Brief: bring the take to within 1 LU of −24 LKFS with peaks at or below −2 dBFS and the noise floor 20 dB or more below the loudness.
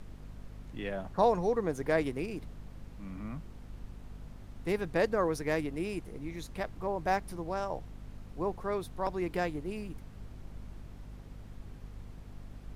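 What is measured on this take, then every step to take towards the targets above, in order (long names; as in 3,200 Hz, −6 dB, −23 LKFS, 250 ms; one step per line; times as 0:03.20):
mains hum 50 Hz; hum harmonics up to 250 Hz; level of the hum −46 dBFS; background noise floor −49 dBFS; target noise floor −54 dBFS; integrated loudness −34.0 LKFS; sample peak −14.0 dBFS; target loudness −24.0 LKFS
→ hum removal 50 Hz, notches 5
noise reduction from a noise print 6 dB
level +10 dB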